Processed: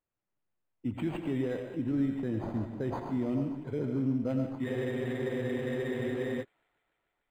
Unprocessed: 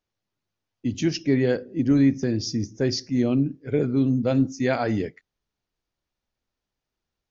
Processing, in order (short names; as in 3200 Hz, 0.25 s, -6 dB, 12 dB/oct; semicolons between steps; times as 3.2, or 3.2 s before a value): limiter -16 dBFS, peak gain reduction 6.5 dB; thin delay 0.147 s, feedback 82%, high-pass 2000 Hz, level -13 dB; on a send at -4 dB: reverb RT60 0.55 s, pre-delay 60 ms; on the sum: spectral freeze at 4.66, 1.76 s; decimation joined by straight lines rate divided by 8×; gain -7.5 dB